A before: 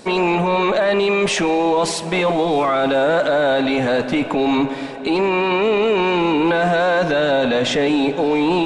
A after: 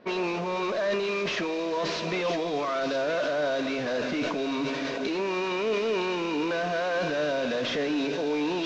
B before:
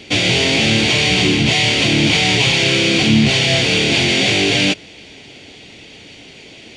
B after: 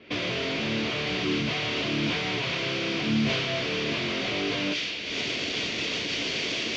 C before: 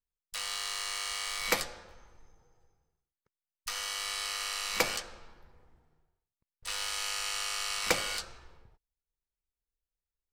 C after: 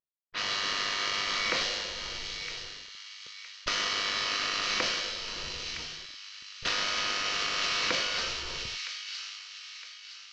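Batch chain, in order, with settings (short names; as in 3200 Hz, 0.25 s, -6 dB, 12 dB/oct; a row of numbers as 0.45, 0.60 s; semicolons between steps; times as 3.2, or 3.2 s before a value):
CVSD 32 kbps; recorder AGC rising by 43 dB/s; notch 820 Hz, Q 5.3; low-pass opened by the level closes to 1700 Hz, open at -17 dBFS; low shelf 130 Hz -10.5 dB; resonator 74 Hz, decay 0.19 s, harmonics all, mix 40%; on a send: thin delay 0.963 s, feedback 41%, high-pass 2500 Hz, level -5 dB; on the sum: sustainer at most 26 dB/s; gain -8 dB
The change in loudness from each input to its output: -10.5, -14.0, +3.0 LU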